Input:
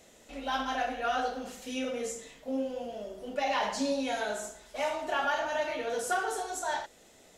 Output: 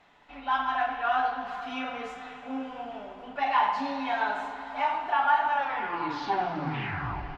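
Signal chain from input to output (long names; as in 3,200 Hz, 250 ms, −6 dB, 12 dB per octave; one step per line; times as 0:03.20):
turntable brake at the end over 1.93 s
low shelf with overshoot 690 Hz −8 dB, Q 3
comb filter 6.9 ms, depth 37%
in parallel at −2 dB: speech leveller within 4 dB 0.5 s
on the sum: high-frequency loss of the air 370 metres
on a send at −8.5 dB: convolution reverb RT60 5.6 s, pre-delay 103 ms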